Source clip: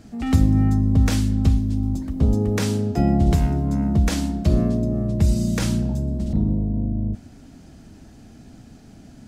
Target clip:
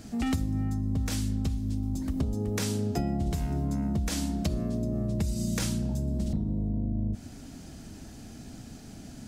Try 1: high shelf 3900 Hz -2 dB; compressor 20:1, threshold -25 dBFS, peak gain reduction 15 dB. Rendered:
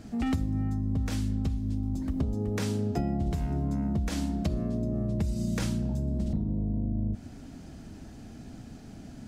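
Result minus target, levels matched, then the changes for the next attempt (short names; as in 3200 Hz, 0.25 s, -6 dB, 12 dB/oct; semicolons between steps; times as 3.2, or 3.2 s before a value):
8000 Hz band -7.0 dB
change: high shelf 3900 Hz +8 dB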